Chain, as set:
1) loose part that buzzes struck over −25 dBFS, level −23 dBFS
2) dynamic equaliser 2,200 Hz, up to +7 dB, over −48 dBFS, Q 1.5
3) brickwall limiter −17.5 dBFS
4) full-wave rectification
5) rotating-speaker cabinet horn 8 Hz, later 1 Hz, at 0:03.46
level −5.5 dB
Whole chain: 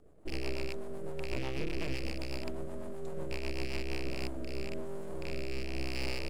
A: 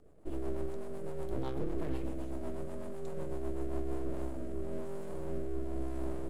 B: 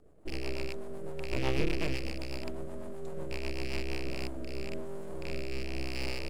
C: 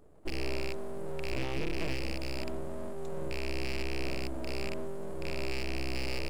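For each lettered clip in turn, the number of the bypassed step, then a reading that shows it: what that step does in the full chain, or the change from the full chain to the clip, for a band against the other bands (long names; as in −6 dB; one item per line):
1, 4 kHz band −17.0 dB
3, change in crest factor +6.5 dB
5, change in integrated loudness +2.0 LU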